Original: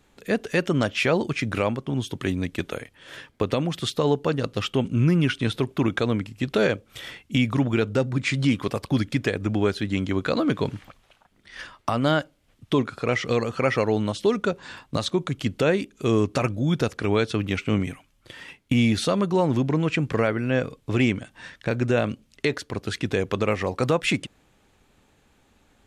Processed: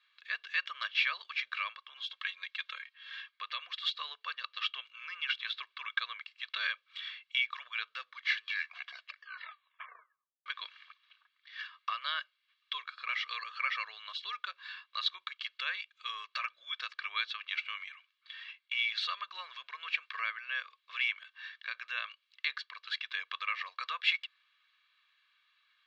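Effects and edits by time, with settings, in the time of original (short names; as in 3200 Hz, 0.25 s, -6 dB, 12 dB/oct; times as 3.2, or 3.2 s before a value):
1.95–3.31 comb 3.7 ms, depth 56%
7.96 tape stop 2.50 s
whole clip: Chebyshev band-pass 1200–4100 Hz, order 3; high shelf 2200 Hz +8.5 dB; comb 1.8 ms, depth 65%; gain -9 dB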